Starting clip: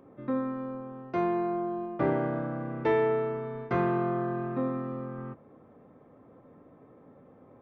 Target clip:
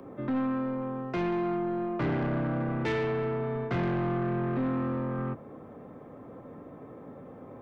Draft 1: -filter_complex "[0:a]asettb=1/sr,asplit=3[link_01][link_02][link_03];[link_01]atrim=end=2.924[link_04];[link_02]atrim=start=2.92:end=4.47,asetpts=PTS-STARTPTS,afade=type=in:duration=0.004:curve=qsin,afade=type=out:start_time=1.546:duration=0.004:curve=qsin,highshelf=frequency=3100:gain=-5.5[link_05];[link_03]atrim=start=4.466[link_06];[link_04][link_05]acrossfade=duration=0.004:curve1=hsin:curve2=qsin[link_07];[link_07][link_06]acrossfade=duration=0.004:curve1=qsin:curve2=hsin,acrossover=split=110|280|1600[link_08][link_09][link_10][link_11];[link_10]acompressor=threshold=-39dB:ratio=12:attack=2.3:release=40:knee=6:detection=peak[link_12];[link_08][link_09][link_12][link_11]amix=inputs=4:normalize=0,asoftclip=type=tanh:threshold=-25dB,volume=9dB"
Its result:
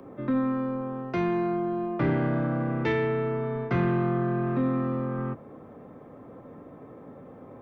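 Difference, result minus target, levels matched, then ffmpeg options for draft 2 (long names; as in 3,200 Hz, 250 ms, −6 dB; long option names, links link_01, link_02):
soft clipping: distortion −11 dB
-filter_complex "[0:a]asettb=1/sr,asplit=3[link_01][link_02][link_03];[link_01]atrim=end=2.924[link_04];[link_02]atrim=start=2.92:end=4.47,asetpts=PTS-STARTPTS,afade=type=in:duration=0.004:curve=qsin,afade=type=out:start_time=1.546:duration=0.004:curve=qsin,highshelf=frequency=3100:gain=-5.5[link_05];[link_03]atrim=start=4.466[link_06];[link_04][link_05]acrossfade=duration=0.004:curve1=hsin:curve2=qsin[link_07];[link_07][link_06]acrossfade=duration=0.004:curve1=qsin:curve2=hsin,acrossover=split=110|280|1600[link_08][link_09][link_10][link_11];[link_10]acompressor=threshold=-39dB:ratio=12:attack=2.3:release=40:knee=6:detection=peak[link_12];[link_08][link_09][link_12][link_11]amix=inputs=4:normalize=0,asoftclip=type=tanh:threshold=-34dB,volume=9dB"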